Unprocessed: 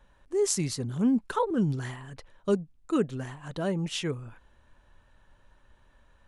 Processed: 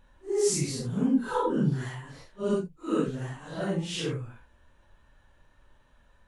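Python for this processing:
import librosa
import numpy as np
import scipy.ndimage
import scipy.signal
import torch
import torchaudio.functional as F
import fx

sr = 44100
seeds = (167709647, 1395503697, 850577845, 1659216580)

y = fx.phase_scramble(x, sr, seeds[0], window_ms=200)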